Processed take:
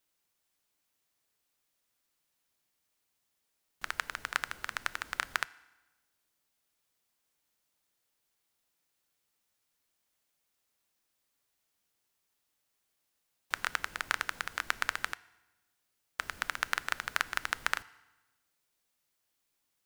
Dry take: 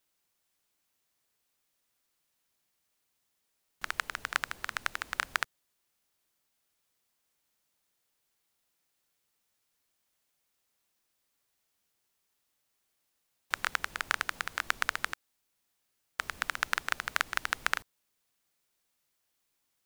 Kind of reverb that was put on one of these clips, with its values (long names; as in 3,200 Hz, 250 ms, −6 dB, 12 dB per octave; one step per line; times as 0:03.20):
feedback delay network reverb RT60 1.1 s, low-frequency decay 1.2×, high-frequency decay 0.85×, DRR 18 dB
level −1.5 dB